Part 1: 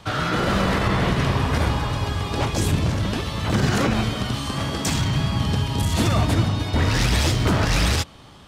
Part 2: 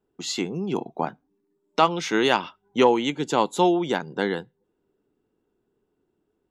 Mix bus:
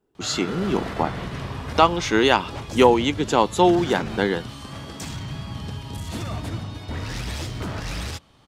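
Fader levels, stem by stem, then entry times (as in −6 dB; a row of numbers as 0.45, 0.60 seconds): −10.5, +3.0 decibels; 0.15, 0.00 seconds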